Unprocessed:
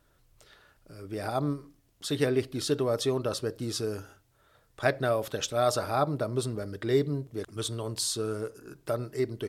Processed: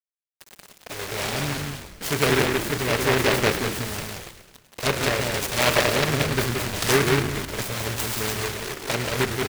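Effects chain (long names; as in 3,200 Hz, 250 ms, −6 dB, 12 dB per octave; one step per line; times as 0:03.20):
compressor on every frequency bin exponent 0.6
rotating-speaker cabinet horn 0.85 Hz, later 7.5 Hz, at 0:06.16
bit-depth reduction 6 bits, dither none
thirty-one-band graphic EQ 315 Hz −10 dB, 1,600 Hz +5 dB, 6,300 Hz −12 dB
flanger swept by the level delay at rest 5.6 ms, full sweep at −22.5 dBFS
on a send: single-tap delay 179 ms −3 dB
on the sum: gain on a spectral selection 0:06.76–0:06.98, 1,200–7,600 Hz +7 dB
low-shelf EQ 66 Hz −10 dB
echo with shifted repeats 105 ms, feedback 60%, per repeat −46 Hz, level −11 dB
short delay modulated by noise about 1,500 Hz, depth 0.27 ms
level +6.5 dB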